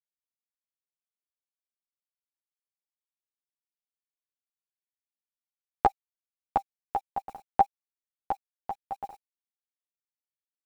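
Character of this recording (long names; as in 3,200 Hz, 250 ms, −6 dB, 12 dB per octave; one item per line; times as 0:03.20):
a quantiser's noise floor 10 bits, dither none
tremolo saw up 5.3 Hz, depth 50%
a shimmering, thickened sound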